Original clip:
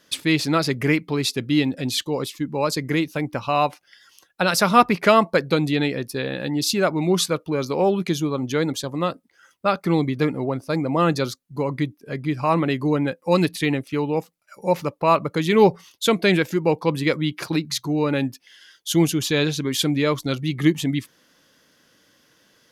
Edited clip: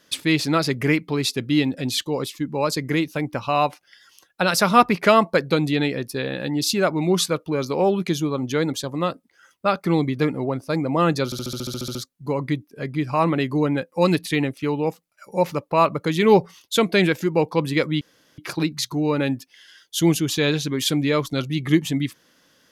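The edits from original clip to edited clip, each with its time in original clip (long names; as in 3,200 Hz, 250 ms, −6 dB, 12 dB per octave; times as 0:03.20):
0:11.25: stutter 0.07 s, 11 plays
0:17.31: splice in room tone 0.37 s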